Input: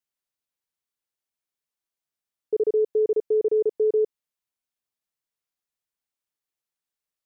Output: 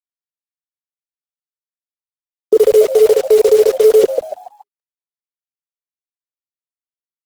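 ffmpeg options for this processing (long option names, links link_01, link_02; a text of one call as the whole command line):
ffmpeg -i in.wav -filter_complex "[0:a]asettb=1/sr,asplit=3[link_01][link_02][link_03];[link_01]atrim=end=2.594[link_04];[link_02]atrim=start=2.59:end=4.04,asetpts=PTS-STARTPTS,afade=type=in:duration=0.004:curve=qsin,afade=type=out:start_time=1.446:duration=0.004:curve=qsin,highpass=frequency=650:width=0.5412,highpass=frequency=650:width=1.3066[link_05];[link_03]atrim=start=4.036[link_06];[link_04][link_05]acrossfade=duration=0.004:curve1=hsin:curve2=qsin[link_07];[link_07][link_06]acrossfade=duration=0.004:curve1=qsin:curve2=hsin,acontrast=50,flanger=delay=2.3:depth=10:regen=-29:speed=1.2:shape=triangular,acrusher=bits=7:mix=0:aa=0.000001,asplit=5[link_08][link_09][link_10][link_11][link_12];[link_09]adelay=141,afreqshift=100,volume=-14dB[link_13];[link_10]adelay=282,afreqshift=200,volume=-22.4dB[link_14];[link_11]adelay=423,afreqshift=300,volume=-30.8dB[link_15];[link_12]adelay=564,afreqshift=400,volume=-39.2dB[link_16];[link_08][link_13][link_14][link_15][link_16]amix=inputs=5:normalize=0,alimiter=level_in=26.5dB:limit=-1dB:release=50:level=0:latency=1,volume=-1dB" -ar 48000 -c:a libopus -b:a 16k out.opus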